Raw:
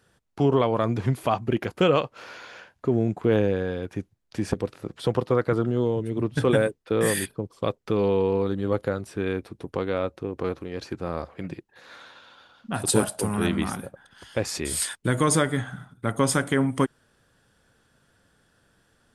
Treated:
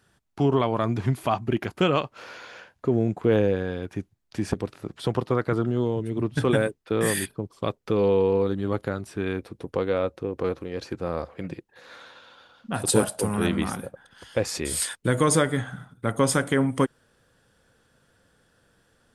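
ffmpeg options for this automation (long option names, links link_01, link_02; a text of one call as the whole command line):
ffmpeg -i in.wav -af "asetnsamples=nb_out_samples=441:pad=0,asendcmd='2.18 equalizer g 2;3.55 equalizer g -5;7.79 equalizer g 3;8.53 equalizer g -6.5;9.39 equalizer g 5',equalizer=frequency=500:width_type=o:width=0.24:gain=-8.5" out.wav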